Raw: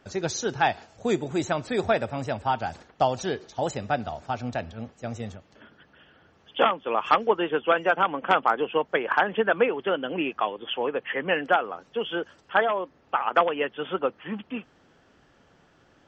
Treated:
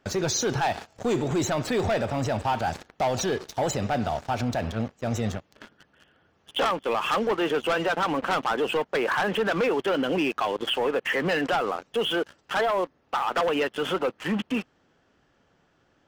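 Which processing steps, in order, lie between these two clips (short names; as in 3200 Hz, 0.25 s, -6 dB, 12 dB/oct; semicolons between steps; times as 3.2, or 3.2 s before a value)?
sample leveller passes 3; limiter -19 dBFS, peak gain reduction 11 dB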